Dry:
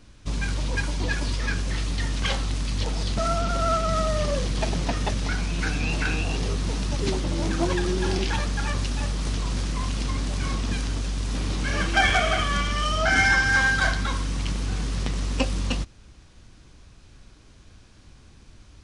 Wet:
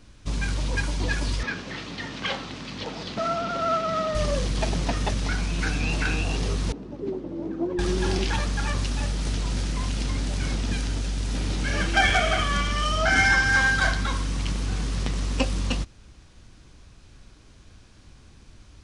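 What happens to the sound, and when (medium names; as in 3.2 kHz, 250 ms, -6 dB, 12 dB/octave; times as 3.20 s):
1.43–4.15 s: band-pass 190–4100 Hz
6.72–7.79 s: band-pass filter 350 Hz, Q 1.7
9.01–12.33 s: band-stop 1.1 kHz, Q 7.7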